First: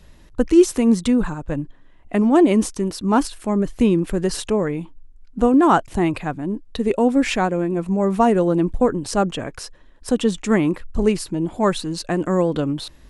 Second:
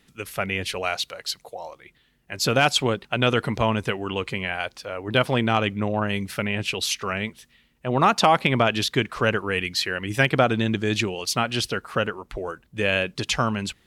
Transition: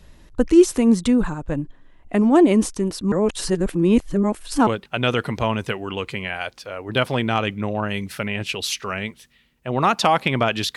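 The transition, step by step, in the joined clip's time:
first
0:03.12–0:04.67: reverse
0:04.67: continue with second from 0:02.86

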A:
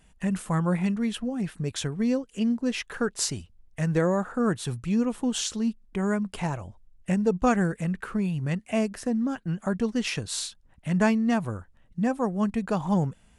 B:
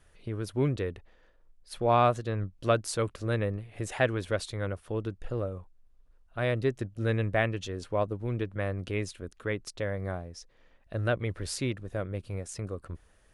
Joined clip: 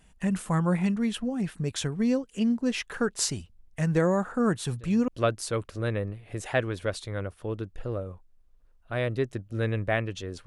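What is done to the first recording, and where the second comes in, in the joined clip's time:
A
0:04.67: mix in B from 0:02.13 0.41 s −17.5 dB
0:05.08: continue with B from 0:02.54

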